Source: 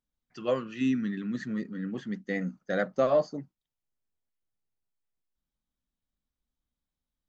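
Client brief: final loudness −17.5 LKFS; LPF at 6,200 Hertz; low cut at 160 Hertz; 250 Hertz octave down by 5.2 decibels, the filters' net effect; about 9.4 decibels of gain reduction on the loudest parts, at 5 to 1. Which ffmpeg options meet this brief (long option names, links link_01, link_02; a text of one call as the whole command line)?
ffmpeg -i in.wav -af "highpass=160,lowpass=6200,equalizer=frequency=250:width_type=o:gain=-5,acompressor=threshold=-31dB:ratio=5,volume=20.5dB" out.wav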